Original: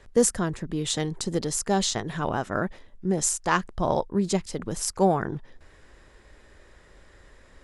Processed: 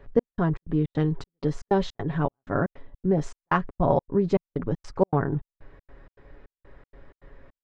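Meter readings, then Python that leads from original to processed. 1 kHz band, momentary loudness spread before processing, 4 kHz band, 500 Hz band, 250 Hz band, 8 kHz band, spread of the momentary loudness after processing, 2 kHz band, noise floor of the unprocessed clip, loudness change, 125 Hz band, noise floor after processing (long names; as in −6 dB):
−1.5 dB, 7 LU, −13.5 dB, +1.0 dB, +1.0 dB, below −25 dB, 7 LU, −3.0 dB, −55 dBFS, −0.5 dB, +4.0 dB, below −85 dBFS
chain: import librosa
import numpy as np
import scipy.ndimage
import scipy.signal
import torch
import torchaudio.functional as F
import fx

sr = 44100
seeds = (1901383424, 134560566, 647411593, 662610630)

y = x + 0.49 * np.pad(x, (int(7.2 * sr / 1000.0), 0))[:len(x)]
y = fx.step_gate(y, sr, bpm=158, pattern='xx..xx.xx.x', floor_db=-60.0, edge_ms=4.5)
y = fx.spacing_loss(y, sr, db_at_10k=43)
y = y * librosa.db_to_amplitude(4.5)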